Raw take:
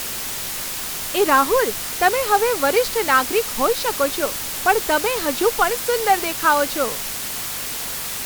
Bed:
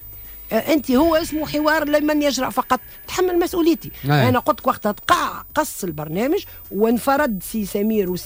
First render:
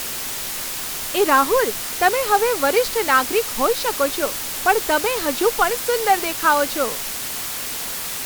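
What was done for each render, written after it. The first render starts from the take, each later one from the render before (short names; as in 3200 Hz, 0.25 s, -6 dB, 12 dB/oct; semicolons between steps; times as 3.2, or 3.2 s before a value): de-hum 50 Hz, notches 4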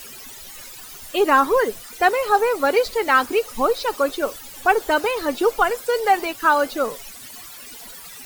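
denoiser 16 dB, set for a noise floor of -28 dBFS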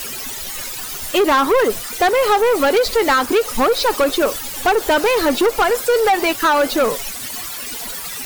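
compressor, threshold -17 dBFS, peak gain reduction 7 dB; sample leveller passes 3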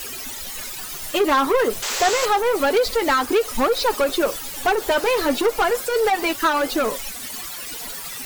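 flange 0.3 Hz, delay 2.3 ms, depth 6.2 ms, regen -45%; 1.82–2.26 painted sound noise 360–8100 Hz -26 dBFS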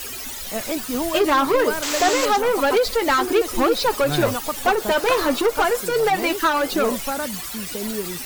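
add bed -9.5 dB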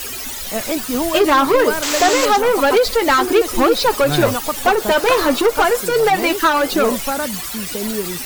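gain +4.5 dB; limiter -3 dBFS, peak gain reduction 1 dB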